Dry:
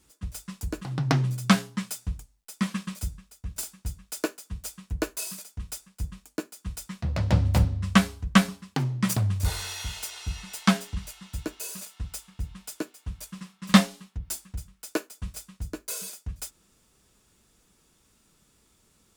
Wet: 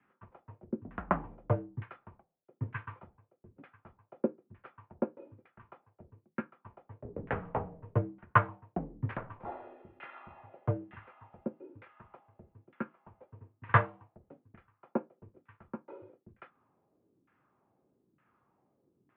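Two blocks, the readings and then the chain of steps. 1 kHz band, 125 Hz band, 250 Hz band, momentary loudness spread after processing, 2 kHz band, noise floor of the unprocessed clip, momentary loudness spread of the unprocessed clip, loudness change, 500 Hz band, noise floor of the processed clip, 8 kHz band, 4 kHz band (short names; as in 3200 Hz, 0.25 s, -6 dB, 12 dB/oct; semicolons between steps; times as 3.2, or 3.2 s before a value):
-1.5 dB, -10.0 dB, -14.0 dB, 25 LU, -6.5 dB, -66 dBFS, 16 LU, -7.0 dB, -2.0 dB, -79 dBFS, under -40 dB, under -25 dB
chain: LFO low-pass saw down 1.1 Hz 350–1900 Hz; mistuned SSB -87 Hz 230–3000 Hz; gain -5 dB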